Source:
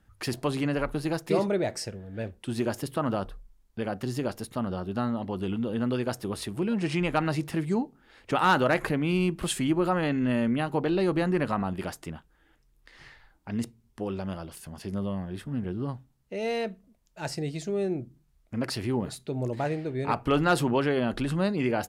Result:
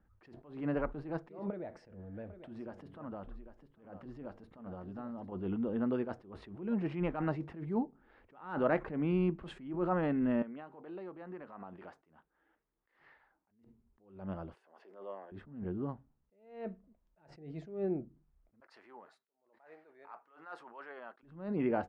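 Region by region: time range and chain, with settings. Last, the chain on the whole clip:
0:01.50–0:05.32: notch filter 390 Hz, Q 10 + downward compressor 4 to 1, threshold −36 dBFS + single-tap delay 799 ms −11.5 dB
0:10.42–0:13.51: high-pass filter 500 Hz 6 dB per octave + downward compressor, threshold −37 dBFS
0:14.54–0:15.32: high-pass filter 420 Hz 24 dB per octave + de-essing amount 90%
0:18.60–0:21.23: high-pass filter 1,300 Hz + parametric band 2,900 Hz −9 dB 1.4 octaves
whole clip: low-pass filter 1,400 Hz 12 dB per octave; parametric band 120 Hz −9.5 dB 0.37 octaves; level that may rise only so fast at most 110 dB per second; level −4 dB

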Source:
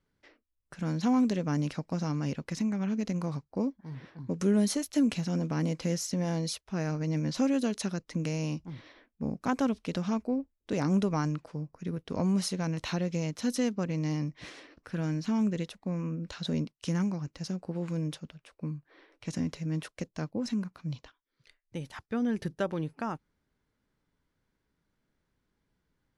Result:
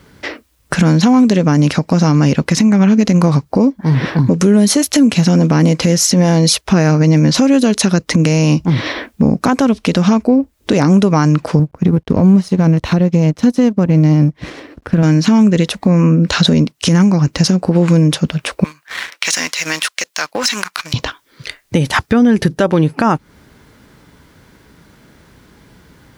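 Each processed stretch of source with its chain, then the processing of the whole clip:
0:11.59–0:15.03: mu-law and A-law mismatch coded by A + spectral tilt −2.5 dB per octave + expander for the loud parts, over −40 dBFS
0:18.64–0:20.94: high-pass filter 1,500 Hz + leveller curve on the samples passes 2 + downward compressor 5 to 1, threshold −47 dBFS
whole clip: high-pass filter 51 Hz; downward compressor 5 to 1, threshold −43 dBFS; boost into a limiter +35 dB; level −1 dB

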